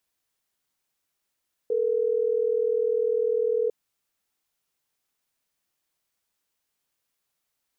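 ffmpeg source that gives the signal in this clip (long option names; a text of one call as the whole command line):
ffmpeg -f lavfi -i "aevalsrc='0.0631*(sin(2*PI*440*t)+sin(2*PI*480*t))*clip(min(mod(t,6),2-mod(t,6))/0.005,0,1)':duration=3.12:sample_rate=44100" out.wav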